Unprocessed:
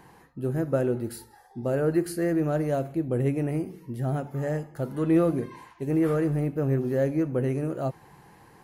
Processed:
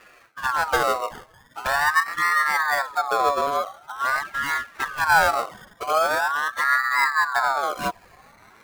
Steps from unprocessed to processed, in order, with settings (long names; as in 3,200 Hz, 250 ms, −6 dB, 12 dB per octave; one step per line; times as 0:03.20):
0:05.98–0:06.60: low-shelf EQ 360 Hz −3.5 dB
sample-and-hold swept by an LFO 21×, swing 60% 0.24 Hz
flanger swept by the level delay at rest 10.3 ms, full sweep at −23.5 dBFS
ring modulator whose carrier an LFO sweeps 1,200 Hz, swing 30%, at 0.44 Hz
level +7.5 dB